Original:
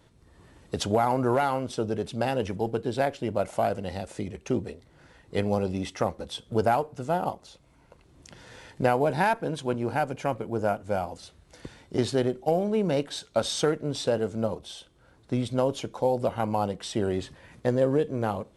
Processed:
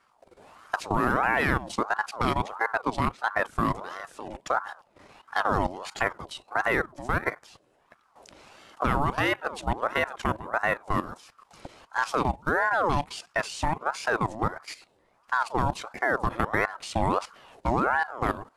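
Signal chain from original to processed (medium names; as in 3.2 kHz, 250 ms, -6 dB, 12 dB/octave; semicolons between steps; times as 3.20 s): level held to a coarse grid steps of 14 dB; ring modulator with a swept carrier 850 Hz, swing 50%, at 1.5 Hz; trim +7 dB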